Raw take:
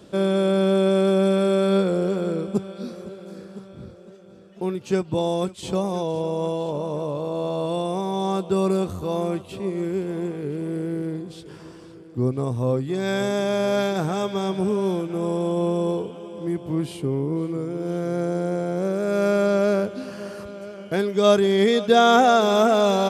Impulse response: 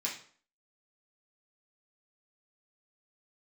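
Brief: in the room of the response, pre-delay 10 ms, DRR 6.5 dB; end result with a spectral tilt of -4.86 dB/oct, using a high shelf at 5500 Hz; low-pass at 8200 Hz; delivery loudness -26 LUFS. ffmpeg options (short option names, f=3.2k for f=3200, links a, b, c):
-filter_complex "[0:a]lowpass=8.2k,highshelf=f=5.5k:g=6,asplit=2[a][b];[1:a]atrim=start_sample=2205,adelay=10[c];[b][c]afir=irnorm=-1:irlink=0,volume=-10dB[d];[a][d]amix=inputs=2:normalize=0,volume=-3.5dB"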